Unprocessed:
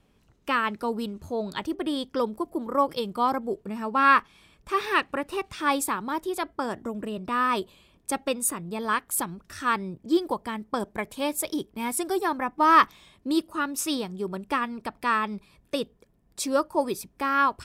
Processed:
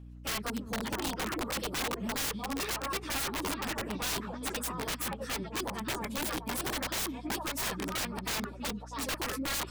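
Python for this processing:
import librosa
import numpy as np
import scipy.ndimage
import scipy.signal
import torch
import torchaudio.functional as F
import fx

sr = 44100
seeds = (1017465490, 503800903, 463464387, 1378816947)

y = fx.highpass(x, sr, hz=48.0, slope=6)
y = fx.echo_stepped(y, sr, ms=594, hz=250.0, octaves=1.4, feedback_pct=70, wet_db=-1)
y = fx.stretch_vocoder_free(y, sr, factor=0.55)
y = (np.mod(10.0 ** (26.0 / 20.0) * y + 1.0, 2.0) - 1.0) / 10.0 ** (26.0 / 20.0)
y = fx.add_hum(y, sr, base_hz=60, snr_db=12)
y = F.gain(torch.from_numpy(y), -2.0).numpy()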